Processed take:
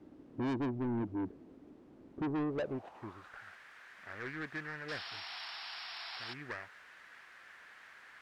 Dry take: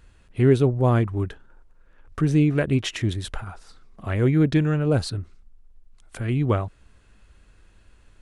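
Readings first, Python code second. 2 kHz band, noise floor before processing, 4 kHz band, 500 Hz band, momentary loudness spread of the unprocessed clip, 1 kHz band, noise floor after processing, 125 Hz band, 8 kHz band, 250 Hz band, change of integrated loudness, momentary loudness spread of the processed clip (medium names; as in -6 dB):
-7.5 dB, -55 dBFS, -8.5 dB, -17.5 dB, 17 LU, -11.5 dB, -58 dBFS, -24.5 dB, -23.0 dB, -15.0 dB, -17.0 dB, 19 LU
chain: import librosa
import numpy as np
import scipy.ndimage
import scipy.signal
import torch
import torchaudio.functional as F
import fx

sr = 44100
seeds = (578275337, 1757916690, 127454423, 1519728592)

y = scipy.ndimage.median_filter(x, 41, mode='constant')
y = fx.dmg_noise_colour(y, sr, seeds[0], colour='pink', level_db=-46.0)
y = fx.filter_sweep_bandpass(y, sr, from_hz=290.0, to_hz=1700.0, start_s=2.18, end_s=3.41, q=3.8)
y = fx.spec_paint(y, sr, seeds[1], shape='noise', start_s=4.88, length_s=1.46, low_hz=650.0, high_hz=5600.0, level_db=-48.0)
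y = 10.0 ** (-35.0 / 20.0) * np.tanh(y / 10.0 ** (-35.0 / 20.0))
y = y * librosa.db_to_amplitude(3.0)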